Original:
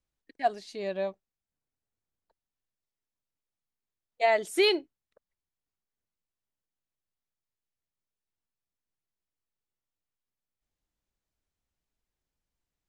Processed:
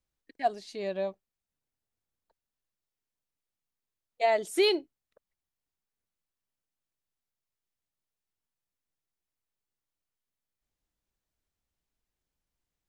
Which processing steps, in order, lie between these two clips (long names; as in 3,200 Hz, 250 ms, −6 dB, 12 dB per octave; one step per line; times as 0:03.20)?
dynamic equaliser 1,800 Hz, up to −5 dB, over −40 dBFS, Q 0.95